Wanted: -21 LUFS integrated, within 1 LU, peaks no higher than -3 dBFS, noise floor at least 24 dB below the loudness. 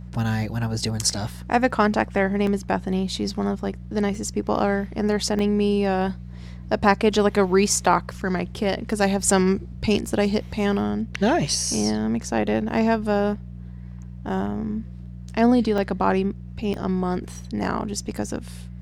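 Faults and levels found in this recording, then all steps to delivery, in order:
dropouts 6; longest dropout 2.0 ms; hum 60 Hz; harmonics up to 180 Hz; hum level -34 dBFS; loudness -23.0 LUFS; peak -2.5 dBFS; loudness target -21.0 LUFS
-> interpolate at 2.47/4.15/5.39/10.11/15.78/16.74, 2 ms; de-hum 60 Hz, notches 3; gain +2 dB; limiter -3 dBFS

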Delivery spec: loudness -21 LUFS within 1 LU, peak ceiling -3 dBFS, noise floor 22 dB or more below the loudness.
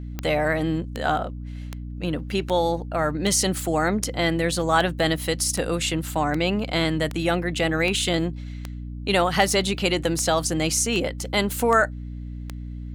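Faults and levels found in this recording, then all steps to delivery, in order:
clicks 17; hum 60 Hz; harmonics up to 300 Hz; hum level -31 dBFS; loudness -23.0 LUFS; peak -3.5 dBFS; loudness target -21.0 LUFS
-> de-click; notches 60/120/180/240/300 Hz; gain +2 dB; limiter -3 dBFS

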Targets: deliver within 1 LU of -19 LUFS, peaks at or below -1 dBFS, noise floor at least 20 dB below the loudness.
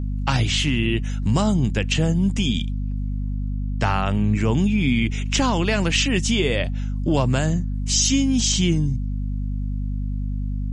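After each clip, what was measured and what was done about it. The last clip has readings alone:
hum 50 Hz; harmonics up to 250 Hz; hum level -23 dBFS; loudness -22.0 LUFS; peak -6.0 dBFS; loudness target -19.0 LUFS
-> notches 50/100/150/200/250 Hz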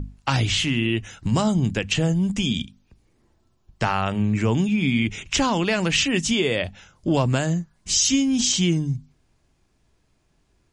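hum none; loudness -22.0 LUFS; peak -7.5 dBFS; loudness target -19.0 LUFS
-> gain +3 dB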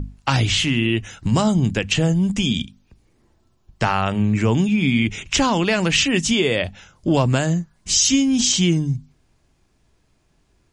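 loudness -19.0 LUFS; peak -4.5 dBFS; noise floor -63 dBFS

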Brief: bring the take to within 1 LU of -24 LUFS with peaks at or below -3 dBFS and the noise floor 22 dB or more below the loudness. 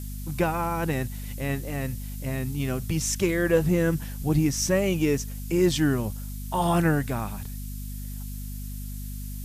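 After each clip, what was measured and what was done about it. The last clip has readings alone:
hum 50 Hz; harmonics up to 250 Hz; hum level -33 dBFS; noise floor -35 dBFS; noise floor target -48 dBFS; loudness -26.0 LUFS; peak -9.5 dBFS; loudness target -24.0 LUFS
-> notches 50/100/150/200/250 Hz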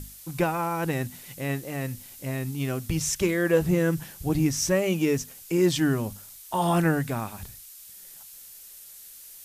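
hum none; noise floor -47 dBFS; noise floor target -49 dBFS
-> denoiser 6 dB, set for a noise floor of -47 dBFS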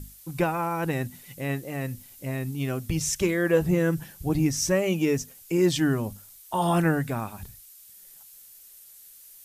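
noise floor -50 dBFS; loudness -26.5 LUFS; peak -10.0 dBFS; loudness target -24.0 LUFS
-> gain +2.5 dB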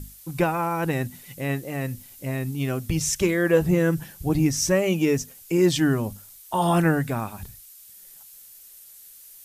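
loudness -24.0 LUFS; peak -7.5 dBFS; noise floor -48 dBFS

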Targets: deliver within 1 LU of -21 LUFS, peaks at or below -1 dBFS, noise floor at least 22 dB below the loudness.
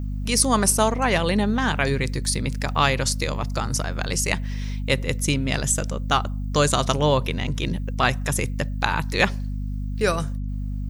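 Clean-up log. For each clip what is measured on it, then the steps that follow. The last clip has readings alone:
hum 50 Hz; harmonics up to 250 Hz; hum level -25 dBFS; loudness -23.0 LUFS; peak -2.5 dBFS; loudness target -21.0 LUFS
-> de-hum 50 Hz, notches 5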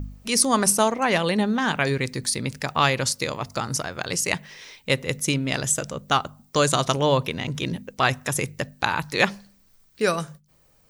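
hum none; loudness -23.5 LUFS; peak -1.5 dBFS; loudness target -21.0 LUFS
-> gain +2.5 dB; limiter -1 dBFS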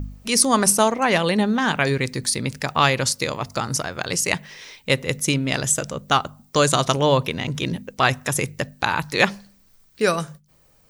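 loudness -21.0 LUFS; peak -1.0 dBFS; noise floor -57 dBFS

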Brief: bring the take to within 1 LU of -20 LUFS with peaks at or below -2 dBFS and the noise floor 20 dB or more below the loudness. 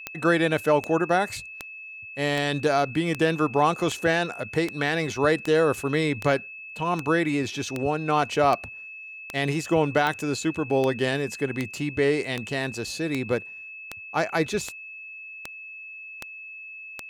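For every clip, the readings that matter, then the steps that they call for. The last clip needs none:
clicks 23; steady tone 2600 Hz; tone level -38 dBFS; loudness -25.0 LUFS; peak -8.5 dBFS; loudness target -20.0 LUFS
-> de-click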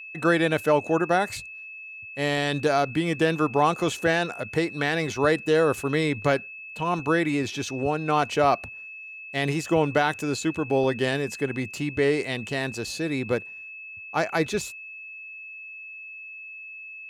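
clicks 0; steady tone 2600 Hz; tone level -38 dBFS
-> notch 2600 Hz, Q 30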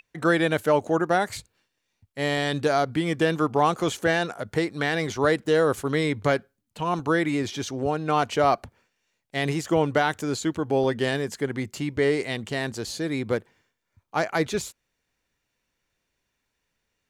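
steady tone none; loudness -25.0 LUFS; peak -9.0 dBFS; loudness target -20.0 LUFS
-> gain +5 dB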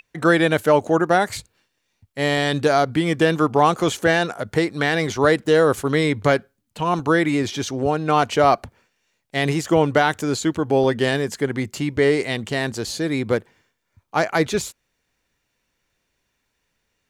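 loudness -20.0 LUFS; peak -4.0 dBFS; noise floor -74 dBFS

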